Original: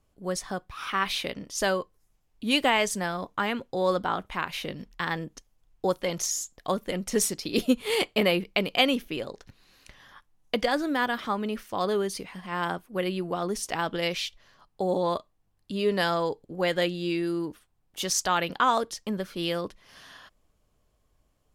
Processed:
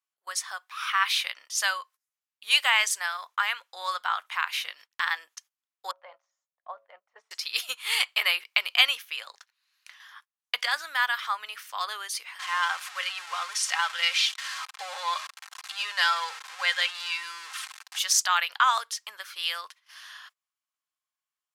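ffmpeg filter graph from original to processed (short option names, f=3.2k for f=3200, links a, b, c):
-filter_complex "[0:a]asettb=1/sr,asplit=3[a][b][c];[a]atrim=end=5.914[d];[b]atrim=start=5.91:end=7.31,asetpts=PTS-STARTPTS,afade=t=in:d=0.004:c=qsin,afade=t=out:st=1.396:d=0.004:c=qsin,lowpass=f=630:t=q:w=2.5,equalizer=f=380:t=o:w=1.6:g=-12,bandreject=f=110.7:t=h:w=4,bandreject=f=221.4:t=h:w=4,bandreject=f=332.1:t=h:w=4,bandreject=f=442.8:t=h:w=4,bandreject=f=553.5:t=h:w=4,bandreject=f=664.2:t=h:w=4[e];[c]atrim=start=7.306[f];[d][e]acrossfade=d=0.004:c1=hsin:c2=qsin[g];[g][f]acrossfade=d=0.004:c1=qsin:c2=hsin,asettb=1/sr,asplit=3[h][i][j];[h]atrim=end=12.394[k];[i]atrim=start=12.39:end=17.99,asetpts=PTS-STARTPTS,afade=t=in:d=0.004:c=qsin,afade=t=out:st=5.596:d=0.004:c=qsin,aeval=exprs='val(0)+0.5*0.0251*sgn(val(0))':c=same,highpass=540,lowpass=7.9k,aecho=1:1:3.8:0.46,atrim=end_sample=246960[l];[j]atrim=start=17.986[m];[k][l]acrossfade=d=0.004:c1=hsin:c2=qsin[n];[n][m]acrossfade=d=0.004:c1=qsin:c2=hsin,highpass=f=1.1k:w=0.5412,highpass=f=1.1k:w=1.3066,agate=range=-17dB:threshold=-56dB:ratio=16:detection=peak,volume=4.5dB"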